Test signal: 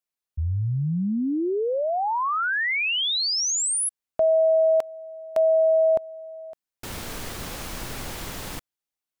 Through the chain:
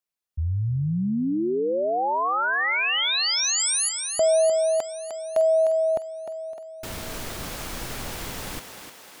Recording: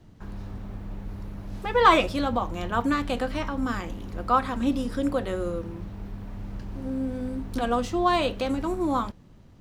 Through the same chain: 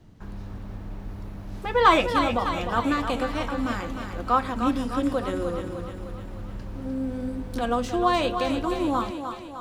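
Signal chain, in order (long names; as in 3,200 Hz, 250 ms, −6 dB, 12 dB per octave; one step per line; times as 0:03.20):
feedback echo with a high-pass in the loop 304 ms, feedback 60%, high-pass 280 Hz, level −7 dB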